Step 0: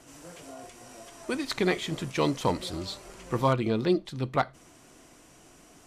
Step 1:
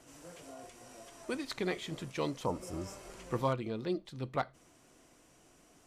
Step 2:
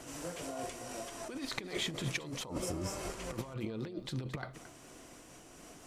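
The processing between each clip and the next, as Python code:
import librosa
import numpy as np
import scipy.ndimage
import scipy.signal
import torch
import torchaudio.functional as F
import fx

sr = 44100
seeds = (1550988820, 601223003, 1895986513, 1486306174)

y1 = fx.spec_repair(x, sr, seeds[0], start_s=2.48, length_s=0.55, low_hz=1400.0, high_hz=5000.0, source='after')
y1 = fx.peak_eq(y1, sr, hz=520.0, db=2.5, octaves=0.39)
y1 = fx.rider(y1, sr, range_db=10, speed_s=0.5)
y1 = y1 * librosa.db_to_amplitude(-9.0)
y2 = fx.over_compress(y1, sr, threshold_db=-43.0, ratio=-1.0)
y2 = y2 + 10.0 ** (-14.0 / 20.0) * np.pad(y2, (int(221 * sr / 1000.0), 0))[:len(y2)]
y2 = fx.am_noise(y2, sr, seeds[1], hz=5.7, depth_pct=55)
y2 = y2 * librosa.db_to_amplitude(6.0)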